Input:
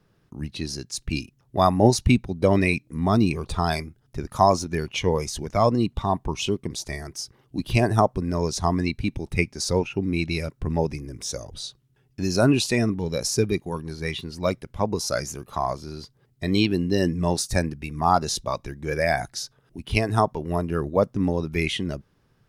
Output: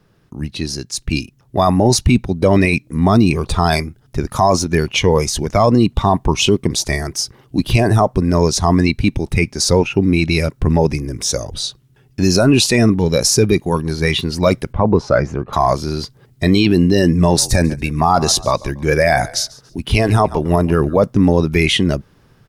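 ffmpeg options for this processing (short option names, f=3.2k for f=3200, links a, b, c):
-filter_complex "[0:a]asettb=1/sr,asplit=3[a][b][c];[a]atrim=end=14.734[d];[b]atrim=start=14.73:end=15.53,asetpts=PTS-STARTPTS,afade=t=in:d=0.004:c=qsin,afade=t=out:st=0.796:d=0.004:c=qsin,lowpass=1.6k[e];[c]atrim=start=15.526[f];[d][e]acrossfade=d=0.004:c1=hsin:c2=qsin[g];[g][f]acrossfade=d=0.004:c1=qsin:c2=hsin,asplit=3[h][i][j];[h]afade=t=out:st=17.29:d=0.02[k];[i]asplit=3[l][m][n];[m]adelay=141,afreqshift=-36,volume=-22dB[o];[n]adelay=282,afreqshift=-72,volume=-32.2dB[p];[l][o][p]amix=inputs=3:normalize=0,afade=t=in:st=17.29:d=0.02,afade=t=out:st=21.03:d=0.02[q];[j]afade=t=in:st=21.03:d=0.02[r];[k][q][r]amix=inputs=3:normalize=0,dynaudnorm=f=970:g=3:m=11.5dB,alimiter=limit=-11dB:level=0:latency=1:release=10,volume=7.5dB"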